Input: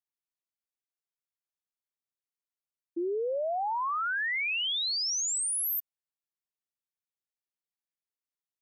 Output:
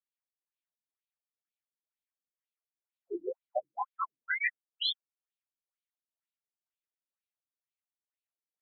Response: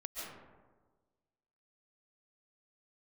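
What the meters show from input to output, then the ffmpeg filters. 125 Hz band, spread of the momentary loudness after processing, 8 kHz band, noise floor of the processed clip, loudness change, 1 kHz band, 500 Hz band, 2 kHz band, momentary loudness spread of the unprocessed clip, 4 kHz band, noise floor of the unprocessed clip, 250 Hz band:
can't be measured, 9 LU, below −40 dB, below −85 dBFS, −6.5 dB, −7.0 dB, −7.0 dB, −4.5 dB, 6 LU, −6.0 dB, below −85 dBFS, −6.5 dB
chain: -filter_complex "[0:a]lowshelf=frequency=210:gain=-12[link_01];[1:a]atrim=start_sample=2205,afade=type=out:start_time=0.29:duration=0.01,atrim=end_sample=13230[link_02];[link_01][link_02]afir=irnorm=-1:irlink=0,afftfilt=real='re*between(b*sr/1024,210*pow(3200/210,0.5+0.5*sin(2*PI*2.1*pts/sr))/1.41,210*pow(3200/210,0.5+0.5*sin(2*PI*2.1*pts/sr))*1.41)':imag='im*between(b*sr/1024,210*pow(3200/210,0.5+0.5*sin(2*PI*2.1*pts/sr))/1.41,210*pow(3200/210,0.5+0.5*sin(2*PI*2.1*pts/sr))*1.41)':win_size=1024:overlap=0.75,volume=3.5dB"

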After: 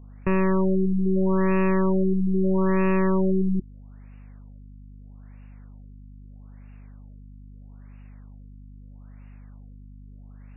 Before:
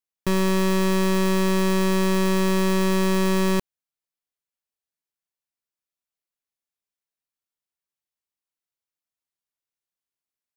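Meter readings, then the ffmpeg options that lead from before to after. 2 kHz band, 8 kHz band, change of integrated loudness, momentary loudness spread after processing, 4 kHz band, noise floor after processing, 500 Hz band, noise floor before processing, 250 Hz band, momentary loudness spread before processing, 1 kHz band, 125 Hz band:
−5.5 dB, below −40 dB, −1.0 dB, 3 LU, below −25 dB, −44 dBFS, −1.0 dB, below −85 dBFS, 0.0 dB, 2 LU, −3.0 dB, +0.5 dB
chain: -af "aeval=exprs='val(0)+0.5*0.00473*sgn(val(0))':channel_layout=same,aeval=exprs='val(0)+0.00708*(sin(2*PI*50*n/s)+sin(2*PI*2*50*n/s)/2+sin(2*PI*3*50*n/s)/3+sin(2*PI*4*50*n/s)/4+sin(2*PI*5*50*n/s)/5)':channel_layout=same,afftfilt=real='re*lt(b*sr/1024,340*pow(2900/340,0.5+0.5*sin(2*PI*0.78*pts/sr)))':imag='im*lt(b*sr/1024,340*pow(2900/340,0.5+0.5*sin(2*PI*0.78*pts/sr)))':win_size=1024:overlap=0.75"

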